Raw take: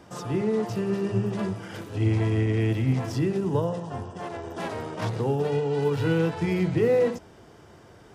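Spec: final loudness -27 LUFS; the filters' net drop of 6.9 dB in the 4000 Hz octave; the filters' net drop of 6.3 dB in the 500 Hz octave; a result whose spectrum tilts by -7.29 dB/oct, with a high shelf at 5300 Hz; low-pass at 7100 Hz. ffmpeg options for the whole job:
-af "lowpass=7.1k,equalizer=f=500:t=o:g=-7.5,equalizer=f=4k:t=o:g=-7.5,highshelf=f=5.3k:g=-4.5,volume=2dB"

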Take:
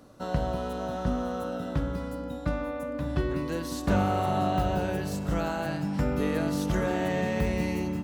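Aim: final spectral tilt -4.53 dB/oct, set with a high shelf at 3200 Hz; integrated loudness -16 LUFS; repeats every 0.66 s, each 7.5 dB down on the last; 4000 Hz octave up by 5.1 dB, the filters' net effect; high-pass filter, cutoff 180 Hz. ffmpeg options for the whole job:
-af "highpass=180,highshelf=f=3.2k:g=-3,equalizer=f=4k:t=o:g=8.5,aecho=1:1:660|1320|1980|2640|3300:0.422|0.177|0.0744|0.0312|0.0131,volume=14dB"

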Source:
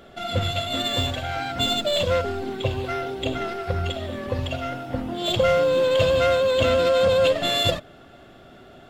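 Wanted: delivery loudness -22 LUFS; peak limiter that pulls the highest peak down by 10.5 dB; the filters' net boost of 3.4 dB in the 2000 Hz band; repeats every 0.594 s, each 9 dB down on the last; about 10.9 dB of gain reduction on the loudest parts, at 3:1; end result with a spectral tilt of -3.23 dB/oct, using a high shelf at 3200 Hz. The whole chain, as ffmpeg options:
-af "equalizer=f=2k:t=o:g=7,highshelf=f=3.2k:g=-6,acompressor=threshold=-30dB:ratio=3,alimiter=level_in=4dB:limit=-24dB:level=0:latency=1,volume=-4dB,aecho=1:1:594|1188|1782|2376:0.355|0.124|0.0435|0.0152,volume=13.5dB"

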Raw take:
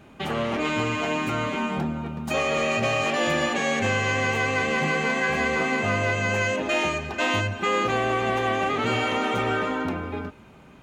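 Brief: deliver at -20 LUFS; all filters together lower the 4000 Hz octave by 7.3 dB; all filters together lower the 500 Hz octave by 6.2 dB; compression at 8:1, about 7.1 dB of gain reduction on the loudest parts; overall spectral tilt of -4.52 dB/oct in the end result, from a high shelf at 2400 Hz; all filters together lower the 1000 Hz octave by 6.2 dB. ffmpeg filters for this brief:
-af "equalizer=f=500:t=o:g=-6,equalizer=f=1k:t=o:g=-5,highshelf=f=2.4k:g=-5,equalizer=f=4k:t=o:g=-5.5,acompressor=threshold=-31dB:ratio=8,volume=14.5dB"

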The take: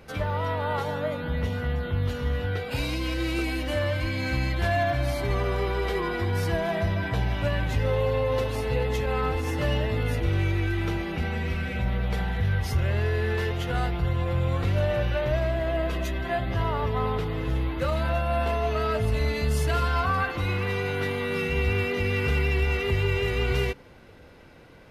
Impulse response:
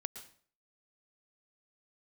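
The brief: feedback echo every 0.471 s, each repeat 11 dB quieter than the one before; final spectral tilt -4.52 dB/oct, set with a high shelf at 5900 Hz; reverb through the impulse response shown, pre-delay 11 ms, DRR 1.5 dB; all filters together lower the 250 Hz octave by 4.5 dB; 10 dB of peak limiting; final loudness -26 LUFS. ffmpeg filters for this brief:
-filter_complex "[0:a]equalizer=f=250:t=o:g=-7,highshelf=f=5.9k:g=3.5,alimiter=limit=-23dB:level=0:latency=1,aecho=1:1:471|942|1413:0.282|0.0789|0.0221,asplit=2[a][b];[1:a]atrim=start_sample=2205,adelay=11[c];[b][c]afir=irnorm=-1:irlink=0,volume=0dB[d];[a][d]amix=inputs=2:normalize=0,volume=3.5dB"

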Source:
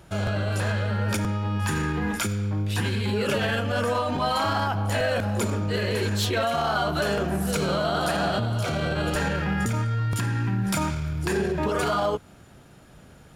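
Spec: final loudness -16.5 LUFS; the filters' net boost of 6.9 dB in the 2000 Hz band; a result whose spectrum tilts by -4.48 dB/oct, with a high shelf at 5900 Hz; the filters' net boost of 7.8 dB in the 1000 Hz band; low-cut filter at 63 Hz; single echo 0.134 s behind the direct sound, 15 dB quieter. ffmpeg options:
-af "highpass=63,equalizer=f=1k:t=o:g=9,equalizer=f=2k:t=o:g=5,highshelf=f=5.9k:g=5,aecho=1:1:134:0.178,volume=5dB"

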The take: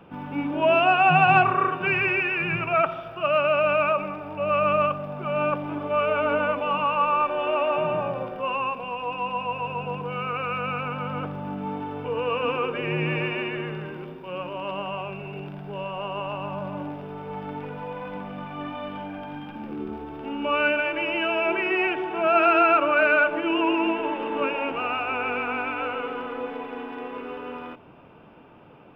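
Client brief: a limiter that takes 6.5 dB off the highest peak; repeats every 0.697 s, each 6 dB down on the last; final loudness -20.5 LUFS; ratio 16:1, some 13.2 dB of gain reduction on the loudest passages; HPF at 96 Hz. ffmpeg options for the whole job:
-af "highpass=96,acompressor=threshold=-27dB:ratio=16,alimiter=level_in=1.5dB:limit=-24dB:level=0:latency=1,volume=-1.5dB,aecho=1:1:697|1394|2091|2788|3485|4182:0.501|0.251|0.125|0.0626|0.0313|0.0157,volume=12.5dB"

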